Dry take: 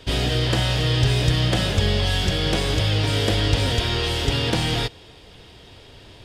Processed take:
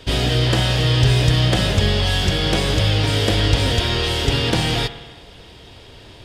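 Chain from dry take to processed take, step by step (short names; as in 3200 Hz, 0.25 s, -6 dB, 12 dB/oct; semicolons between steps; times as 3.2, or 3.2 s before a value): spring tank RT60 1.4 s, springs 56 ms, chirp 75 ms, DRR 11.5 dB; gain +3 dB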